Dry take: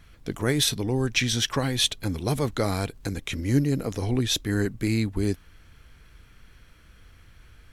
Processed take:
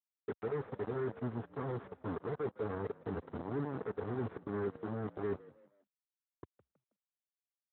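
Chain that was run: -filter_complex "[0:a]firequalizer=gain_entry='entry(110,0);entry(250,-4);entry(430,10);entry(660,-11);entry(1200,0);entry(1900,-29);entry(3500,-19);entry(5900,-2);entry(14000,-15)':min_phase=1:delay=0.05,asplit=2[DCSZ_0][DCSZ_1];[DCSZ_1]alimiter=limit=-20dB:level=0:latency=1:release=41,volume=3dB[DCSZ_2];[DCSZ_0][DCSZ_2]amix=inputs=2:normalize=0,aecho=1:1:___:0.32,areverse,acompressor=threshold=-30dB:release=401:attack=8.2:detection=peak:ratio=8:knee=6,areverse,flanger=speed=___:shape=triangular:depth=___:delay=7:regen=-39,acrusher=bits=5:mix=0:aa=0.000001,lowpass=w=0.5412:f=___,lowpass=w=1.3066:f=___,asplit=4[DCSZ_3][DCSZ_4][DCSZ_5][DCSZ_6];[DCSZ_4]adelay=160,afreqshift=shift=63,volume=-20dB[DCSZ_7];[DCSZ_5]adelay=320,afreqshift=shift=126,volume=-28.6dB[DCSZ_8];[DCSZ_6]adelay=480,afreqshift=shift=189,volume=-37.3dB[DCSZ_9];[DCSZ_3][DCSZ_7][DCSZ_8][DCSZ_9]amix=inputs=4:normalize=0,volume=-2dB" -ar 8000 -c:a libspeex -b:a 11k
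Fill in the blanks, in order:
4.5, 1.4, 3.2, 1700, 1700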